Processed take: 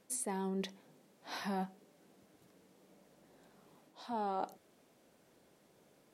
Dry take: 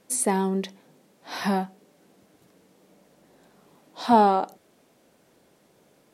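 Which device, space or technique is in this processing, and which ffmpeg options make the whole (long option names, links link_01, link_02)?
compression on the reversed sound: -af "areverse,acompressor=threshold=-27dB:ratio=12,areverse,volume=-6.5dB"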